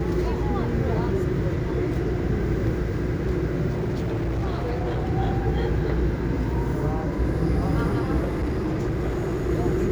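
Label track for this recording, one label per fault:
3.700000	5.060000	clipped -22 dBFS
8.210000	9.510000	clipped -21.5 dBFS

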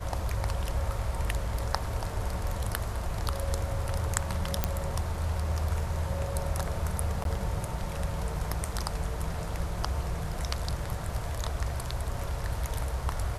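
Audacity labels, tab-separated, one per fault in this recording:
4.640000	4.640000	pop -9 dBFS
7.240000	7.250000	dropout 12 ms

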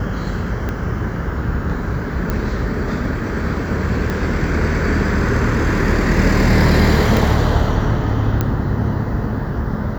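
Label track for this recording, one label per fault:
0.690000	0.690000	pop -11 dBFS
2.300000	2.300000	pop -8 dBFS
4.100000	4.100000	pop -9 dBFS
7.170000	7.170000	pop
8.410000	8.410000	pop -5 dBFS

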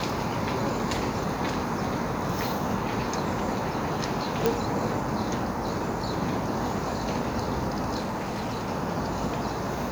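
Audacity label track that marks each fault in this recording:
4.460000	4.460000	pop
7.980000	8.700000	clipped -27 dBFS

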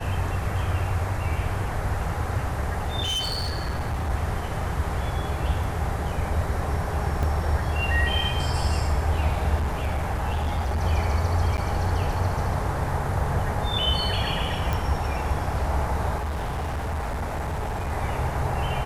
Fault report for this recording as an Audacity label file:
3.020000	4.110000	clipped -23.5 dBFS
7.230000	7.230000	dropout 2.7 ms
9.560000	10.810000	clipped -21.5 dBFS
11.570000	11.580000	dropout 9.8 ms
14.730000	14.730000	pop
16.180000	17.920000	clipped -25 dBFS

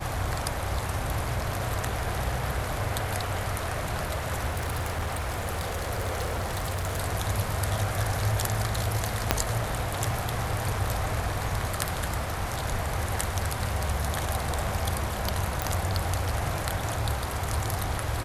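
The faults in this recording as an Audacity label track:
4.500000	7.000000	clipped -25.5 dBFS
9.310000	9.310000	pop -3 dBFS
15.620000	15.620000	pop

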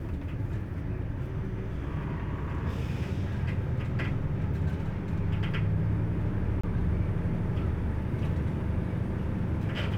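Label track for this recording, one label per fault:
6.610000	6.630000	dropout 25 ms

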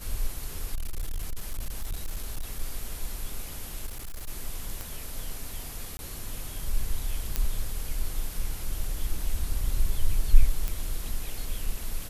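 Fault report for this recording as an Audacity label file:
0.740000	2.590000	clipped -27 dBFS
3.860000	4.290000	clipped -32.5 dBFS
4.810000	4.810000	pop
5.970000	5.990000	dropout 20 ms
7.360000	7.360000	pop -10 dBFS
10.680000	10.680000	pop -15 dBFS

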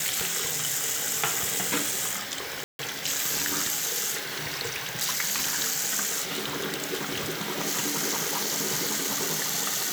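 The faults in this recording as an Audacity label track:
2.640000	2.790000	dropout 151 ms

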